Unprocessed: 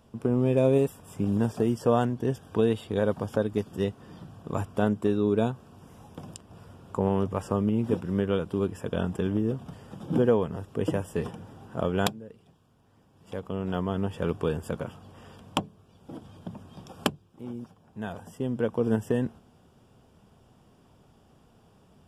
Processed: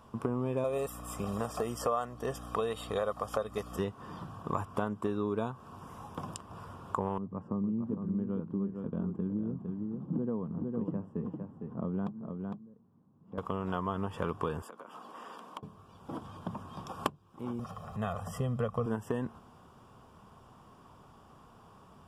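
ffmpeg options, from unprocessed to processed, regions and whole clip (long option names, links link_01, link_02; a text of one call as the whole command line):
ffmpeg -i in.wav -filter_complex "[0:a]asettb=1/sr,asplit=3[link_01][link_02][link_03];[link_01]atrim=end=0.644[link_04];[link_02]atrim=start=0.64:end=3.79,asetpts=PTS-STARTPTS,afade=type=in:duration=0.004:curve=qsin,afade=type=out:start_time=3.146:duration=0.004:curve=qsin,aecho=1:1:1.6:0.59,atrim=end_sample=138915,aeval=exprs='val(0)+0.02*(sin(2*PI*60*n/s)+sin(2*PI*2*60*n/s)/2+sin(2*PI*3*60*n/s)/3+sin(2*PI*4*60*n/s)/4+sin(2*PI*5*60*n/s)/5)':channel_layout=same,bass=frequency=250:gain=-12,treble=frequency=4000:gain=5[link_05];[link_03]atrim=start=3.786[link_06];[link_04][link_05]acrossfade=duration=0.004:curve1=hsin:curve2=qsin[link_07];[link_07][link_06]acrossfade=duration=0.004:curve1=qsin:curve2=hsin,asettb=1/sr,asplit=3[link_08][link_09][link_10];[link_08]atrim=end=7.184[link_11];[link_09]atrim=start=7.18:end=13.38,asetpts=PTS-STARTPTS,afade=type=in:duration=0.004:curve=qsin,afade=type=out:start_time=6.196:duration=0.004:curve=qsin,bandpass=frequency=200:width_type=q:width=2,aecho=1:1:457:0.422,atrim=end_sample=273420[link_12];[link_10]atrim=start=13.376[link_13];[link_11][link_12]acrossfade=duration=0.004:curve1=hsin:curve2=qsin[link_14];[link_14][link_13]acrossfade=duration=0.004:curve1=qsin:curve2=hsin,asettb=1/sr,asplit=3[link_15][link_16][link_17];[link_15]atrim=end=14.624[link_18];[link_16]atrim=start=14.62:end=15.63,asetpts=PTS-STARTPTS,afade=type=in:duration=0.004:curve=qsin,afade=type=out:start_time=1.006:duration=0.004:curve=qsin,highpass=frequency=240:width=0.5412,highpass=frequency=240:width=1.3066,acompressor=threshold=-47dB:ratio=10:attack=3.2:release=140:knee=1:detection=peak[link_19];[link_17]atrim=start=15.626[link_20];[link_18][link_19]acrossfade=duration=0.004:curve1=hsin:curve2=qsin[link_21];[link_21][link_20]acrossfade=duration=0.004:curve1=qsin:curve2=hsin,asettb=1/sr,asplit=3[link_22][link_23][link_24];[link_22]atrim=end=17.594[link_25];[link_23]atrim=start=17.59:end=18.86,asetpts=PTS-STARTPTS,afade=type=in:duration=0.004:curve=qsin,afade=type=out:start_time=1.266:duration=0.004:curve=qsin,aecho=1:1:1.6:0.8,atrim=end_sample=56007,asubboost=boost=4:cutoff=250,acompressor=mode=upward:threshold=-35dB:ratio=2.5:attack=3.2:release=140:knee=2.83:detection=peak[link_26];[link_24]atrim=start=18.856[link_27];[link_25][link_26]acrossfade=duration=0.004:curve1=hsin:curve2=qsin[link_28];[link_28][link_27]acrossfade=duration=0.004:curve1=qsin:curve2=hsin,equalizer=frequency=1100:width_type=o:width=0.68:gain=13,acompressor=threshold=-30dB:ratio=4" out.wav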